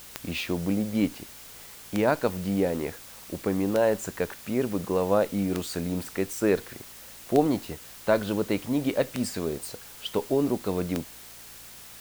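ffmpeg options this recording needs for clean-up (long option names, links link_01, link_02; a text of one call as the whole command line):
ffmpeg -i in.wav -af "adeclick=threshold=4,bandreject=frequency=56.9:width_type=h:width=4,bandreject=frequency=113.8:width_type=h:width=4,bandreject=frequency=170.7:width_type=h:width=4,bandreject=frequency=227.6:width_type=h:width=4,afftdn=noise_reduction=25:noise_floor=-46" out.wav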